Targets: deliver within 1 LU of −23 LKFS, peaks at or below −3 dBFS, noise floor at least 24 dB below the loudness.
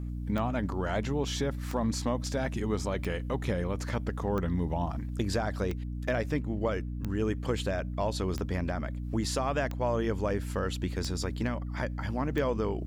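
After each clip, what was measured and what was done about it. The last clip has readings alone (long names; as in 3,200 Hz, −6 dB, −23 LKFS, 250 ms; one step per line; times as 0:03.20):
number of clicks 10; mains hum 60 Hz; hum harmonics up to 300 Hz; level of the hum −33 dBFS; integrated loudness −32.0 LKFS; sample peak −16.0 dBFS; target loudness −23.0 LKFS
→ click removal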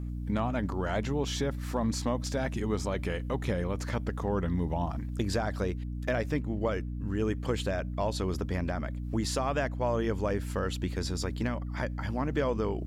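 number of clicks 0; mains hum 60 Hz; hum harmonics up to 300 Hz; level of the hum −33 dBFS
→ hum removal 60 Hz, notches 5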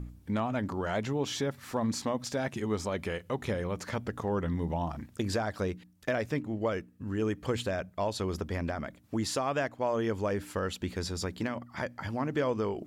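mains hum none found; integrated loudness −33.0 LKFS; sample peak −17.0 dBFS; target loudness −23.0 LKFS
→ level +10 dB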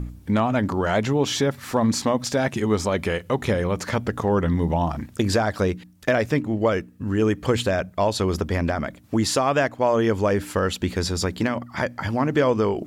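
integrated loudness −23.0 LKFS; sample peak −7.0 dBFS; background noise floor −47 dBFS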